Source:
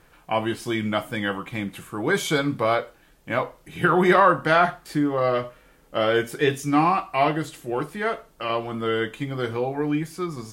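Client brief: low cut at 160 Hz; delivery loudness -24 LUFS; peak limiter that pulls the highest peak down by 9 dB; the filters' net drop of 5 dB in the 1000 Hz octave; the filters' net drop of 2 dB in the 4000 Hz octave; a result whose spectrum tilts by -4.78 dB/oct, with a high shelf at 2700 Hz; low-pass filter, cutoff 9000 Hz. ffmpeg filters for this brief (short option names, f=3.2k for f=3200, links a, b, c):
-af "highpass=160,lowpass=9k,equalizer=f=1k:t=o:g=-7.5,highshelf=f=2.7k:g=6.5,equalizer=f=4k:t=o:g=-7.5,volume=4dB,alimiter=limit=-11.5dB:level=0:latency=1"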